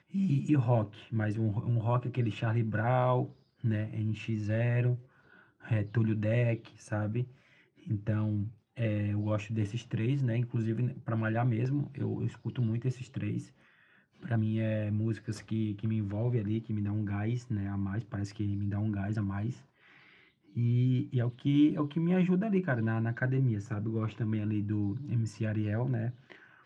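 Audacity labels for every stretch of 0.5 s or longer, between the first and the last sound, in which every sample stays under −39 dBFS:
4.960000	5.650000	silence
7.240000	7.870000	silence
13.430000	14.250000	silence
19.530000	20.570000	silence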